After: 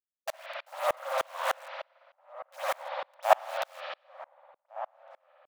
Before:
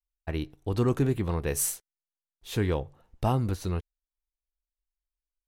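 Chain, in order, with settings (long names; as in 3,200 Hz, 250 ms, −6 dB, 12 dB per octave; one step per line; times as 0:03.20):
low-pass filter 1,100 Hz 12 dB per octave
in parallel at 0 dB: brickwall limiter −22.5 dBFS, peak gain reduction 8 dB
on the sum: automatic gain control gain up to 12 dB
bit reduction 5 bits
soft clipping −14.5 dBFS, distortion −9 dB
linear-phase brick-wall high-pass 530 Hz
slap from a distant wall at 250 metres, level −14 dB
convolution reverb, pre-delay 55 ms, DRR −8.5 dB
tremolo with a ramp in dB swelling 3.3 Hz, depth 34 dB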